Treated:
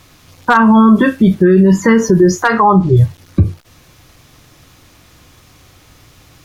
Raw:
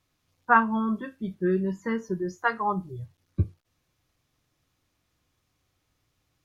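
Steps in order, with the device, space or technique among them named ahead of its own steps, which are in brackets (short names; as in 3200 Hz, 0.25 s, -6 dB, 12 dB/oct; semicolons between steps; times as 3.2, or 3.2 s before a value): loud club master (compressor 2.5:1, threshold -27 dBFS, peak gain reduction 9.5 dB; hard clip -18.5 dBFS, distortion -23 dB; maximiser +30 dB); 2.52–2.97 LPF 5300 Hz 12 dB/oct; gain -1 dB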